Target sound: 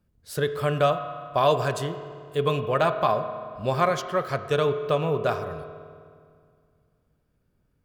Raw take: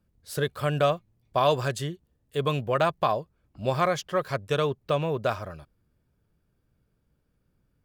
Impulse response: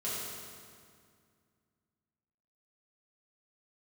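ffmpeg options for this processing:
-filter_complex "[0:a]asplit=2[s0][s1];[1:a]atrim=start_sample=2205,lowpass=2900,lowshelf=f=180:g=-9.5[s2];[s1][s2]afir=irnorm=-1:irlink=0,volume=0.299[s3];[s0][s3]amix=inputs=2:normalize=0"

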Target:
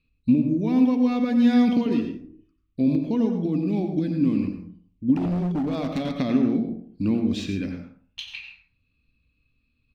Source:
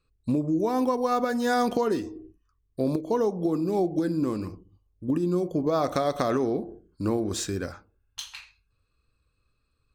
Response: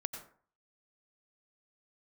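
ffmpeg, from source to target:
-filter_complex "[0:a]firequalizer=gain_entry='entry(110,0);entry(250,9);entry(370,-7);entry(970,-10);entry(1400,-13);entry(2400,8);entry(5100,-8);entry(7800,-19);entry(12000,-17)':delay=0.05:min_phase=1[s0];[1:a]atrim=start_sample=2205[s1];[s0][s1]afir=irnorm=-1:irlink=0,asplit=3[s2][s3][s4];[s2]afade=t=out:st=5.14:d=0.02[s5];[s3]volume=15.8,asoftclip=hard,volume=0.0631,afade=t=in:st=5.14:d=0.02,afade=t=out:st=6.16:d=0.02[s6];[s4]afade=t=in:st=6.16:d=0.02[s7];[s5][s6][s7]amix=inputs=3:normalize=0,volume=1.26"

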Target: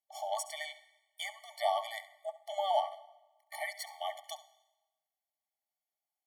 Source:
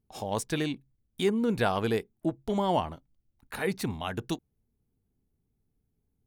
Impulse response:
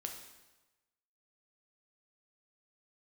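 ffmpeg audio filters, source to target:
-filter_complex "[0:a]asuperstop=centerf=1000:order=20:qfactor=5,asplit=2[s0][s1];[1:a]atrim=start_sample=2205,adelay=68[s2];[s1][s2]afir=irnorm=-1:irlink=0,volume=0.251[s3];[s0][s3]amix=inputs=2:normalize=0,afftfilt=real='re*eq(mod(floor(b*sr/1024/590),2),1)':imag='im*eq(mod(floor(b*sr/1024/590),2),1)':win_size=1024:overlap=0.75"

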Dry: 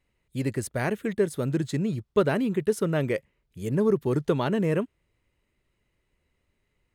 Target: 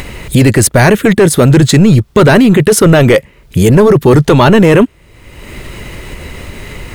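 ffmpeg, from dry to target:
-filter_complex "[0:a]asplit=2[s0][s1];[s1]acompressor=mode=upward:threshold=0.0562:ratio=2.5,volume=1.12[s2];[s0][s2]amix=inputs=2:normalize=0,apsyclip=11.9,volume=0.841"

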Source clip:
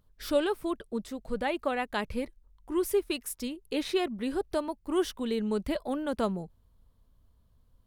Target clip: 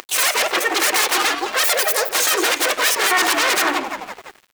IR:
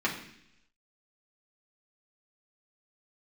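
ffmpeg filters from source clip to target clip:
-filter_complex "[0:a]asplit=5[s0][s1][s2][s3][s4];[s1]adelay=295,afreqshift=-41,volume=0.224[s5];[s2]adelay=590,afreqshift=-82,volume=0.0832[s6];[s3]adelay=885,afreqshift=-123,volume=0.0305[s7];[s4]adelay=1180,afreqshift=-164,volume=0.0114[s8];[s0][s5][s6][s7][s8]amix=inputs=5:normalize=0,aeval=exprs='0.2*(cos(1*acos(clip(val(0)/0.2,-1,1)))-cos(1*PI/2))+0.00398*(cos(3*acos(clip(val(0)/0.2,-1,1)))-cos(3*PI/2))+0.00126*(cos(4*acos(clip(val(0)/0.2,-1,1)))-cos(4*PI/2))+0.00224*(cos(5*acos(clip(val(0)/0.2,-1,1)))-cos(5*PI/2))+0.0501*(cos(6*acos(clip(val(0)/0.2,-1,1)))-cos(6*PI/2))':c=same,acompressor=mode=upward:threshold=0.0112:ratio=2.5,asetrate=76440,aresample=44100,aeval=exprs='0.211*sin(PI/2*10*val(0)/0.211)':c=same,highpass=f=290:w=0.5412,highpass=f=290:w=1.3066,asplit=2[s9][s10];[s10]asetrate=55563,aresample=44100,atempo=0.793701,volume=0.447[s11];[s9][s11]amix=inputs=2:normalize=0,asplit=2[s12][s13];[1:a]atrim=start_sample=2205,lowpass=3400[s14];[s13][s14]afir=irnorm=-1:irlink=0,volume=0.282[s15];[s12][s15]amix=inputs=2:normalize=0,aeval=exprs='sgn(val(0))*max(abs(val(0))-0.0251,0)':c=same,tiltshelf=f=970:g=-5,volume=0.708"

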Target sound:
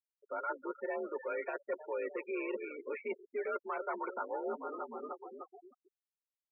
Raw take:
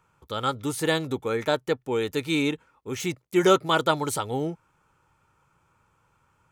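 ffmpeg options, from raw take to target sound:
-filter_complex "[0:a]agate=range=0.0224:threshold=0.00158:ratio=3:detection=peak,tremolo=f=60:d=0.571,asplit=2[s0][s1];[s1]asplit=5[s2][s3][s4][s5][s6];[s2]adelay=305,afreqshift=-36,volume=0.0708[s7];[s3]adelay=610,afreqshift=-72,volume=0.0462[s8];[s4]adelay=915,afreqshift=-108,volume=0.0299[s9];[s5]adelay=1220,afreqshift=-144,volume=0.0195[s10];[s6]adelay=1525,afreqshift=-180,volume=0.0126[s11];[s7][s8][s9][s10][s11]amix=inputs=5:normalize=0[s12];[s0][s12]amix=inputs=2:normalize=0,acrossover=split=370|1700[s13][s14][s15];[s13]acompressor=threshold=0.00794:ratio=4[s16];[s14]acompressor=threshold=0.0316:ratio=4[s17];[s15]acompressor=threshold=0.0158:ratio=4[s18];[s16][s17][s18]amix=inputs=3:normalize=0,asoftclip=type=tanh:threshold=0.0376,aecho=1:1:5.9:0.57,areverse,acompressor=threshold=0.00447:ratio=6,areverse,highpass=f=230:t=q:w=0.5412,highpass=f=230:t=q:w=1.307,lowpass=f=2500:t=q:w=0.5176,lowpass=f=2500:t=q:w=0.7071,lowpass=f=2500:t=q:w=1.932,afreqshift=56,afftfilt=real='re*gte(hypot(re,im),0.00355)':imag='im*gte(hypot(re,im),0.00355)':win_size=1024:overlap=0.75,volume=3.76"

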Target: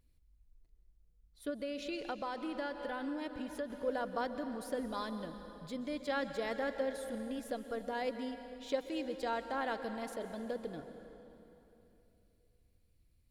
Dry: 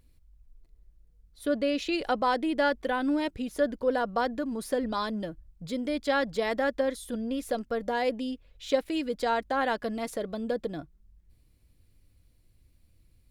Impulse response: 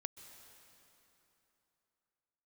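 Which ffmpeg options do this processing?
-filter_complex "[1:a]atrim=start_sample=2205[s0];[0:a][s0]afir=irnorm=-1:irlink=0,asettb=1/sr,asplit=3[s1][s2][s3];[s1]atrim=end=1.494[s4];[s2]atrim=start=1.49:end=3.7,asetpts=PTS-STARTPTS,afade=t=in:d=0.004:c=qsin,afade=t=out:st=2.206:d=0.004:c=qsin,acompressor=threshold=0.0316:ratio=6[s5];[s3]atrim=start=3.696[s6];[s4][s5]acrossfade=d=0.004:c1=hsin:c2=qsin[s7];[s7][s6]acrossfade=d=0.004:c1=qsin:c2=hsin,volume=0.531"

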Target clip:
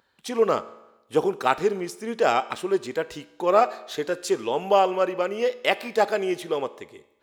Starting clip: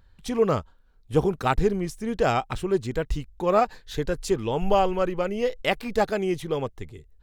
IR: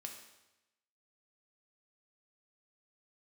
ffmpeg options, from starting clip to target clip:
-filter_complex "[0:a]highpass=350,asplit=2[s0][s1];[1:a]atrim=start_sample=2205,highshelf=f=9100:g=-6[s2];[s1][s2]afir=irnorm=-1:irlink=0,volume=0.668[s3];[s0][s3]amix=inputs=2:normalize=0"

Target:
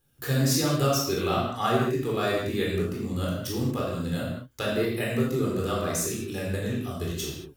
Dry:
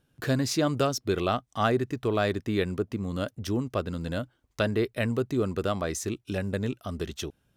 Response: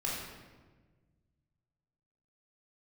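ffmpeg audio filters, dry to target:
-filter_complex "[0:a]aemphasis=mode=production:type=50fm[s0];[1:a]atrim=start_sample=2205,afade=t=out:st=0.29:d=0.01,atrim=end_sample=13230[s1];[s0][s1]afir=irnorm=-1:irlink=0,volume=0.631"

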